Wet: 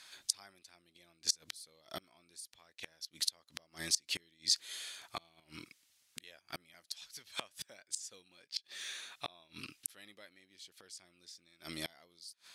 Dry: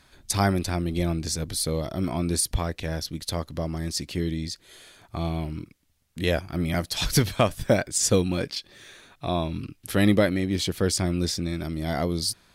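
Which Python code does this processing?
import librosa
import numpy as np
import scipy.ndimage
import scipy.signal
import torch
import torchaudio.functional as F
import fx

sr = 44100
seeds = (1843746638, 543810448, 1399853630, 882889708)

y = fx.gate_flip(x, sr, shuts_db=-20.0, range_db=-29)
y = fx.bandpass_q(y, sr, hz=5600.0, q=0.52)
y = y * 10.0 ** (6.5 / 20.0)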